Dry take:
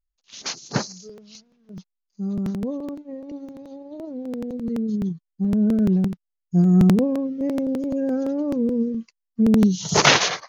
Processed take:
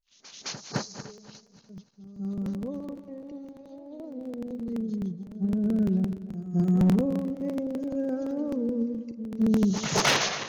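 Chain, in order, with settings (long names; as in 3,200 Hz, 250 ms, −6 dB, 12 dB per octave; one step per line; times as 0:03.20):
feedback delay that plays each chunk backwards 147 ms, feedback 56%, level −11.5 dB
echo ahead of the sound 214 ms −14 dB
gain into a clipping stage and back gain 10 dB
level −6.5 dB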